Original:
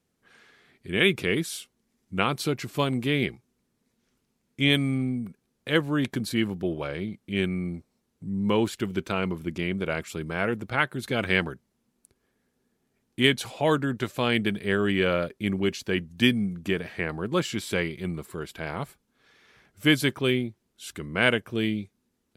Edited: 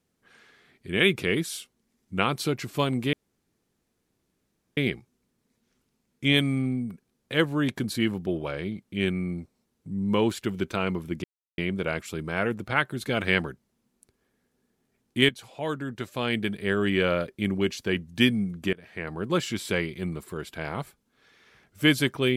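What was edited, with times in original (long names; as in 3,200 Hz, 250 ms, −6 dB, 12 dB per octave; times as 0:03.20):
0:03.13: splice in room tone 1.64 s
0:09.60: splice in silence 0.34 s
0:13.31–0:14.96: fade in, from −12.5 dB
0:16.75–0:17.28: fade in, from −23 dB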